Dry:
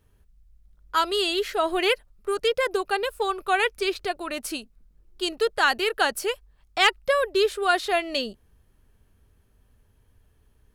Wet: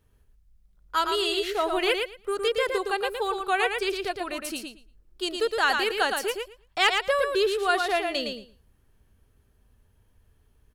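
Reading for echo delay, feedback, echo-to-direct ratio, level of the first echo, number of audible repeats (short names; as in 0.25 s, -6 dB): 0.113 s, 15%, -5.0 dB, -5.0 dB, 2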